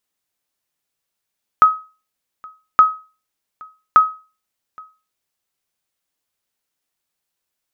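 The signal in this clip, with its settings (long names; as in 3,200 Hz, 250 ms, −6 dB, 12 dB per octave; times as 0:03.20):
ping with an echo 1,270 Hz, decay 0.33 s, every 1.17 s, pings 3, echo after 0.82 s, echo −27.5 dB −2 dBFS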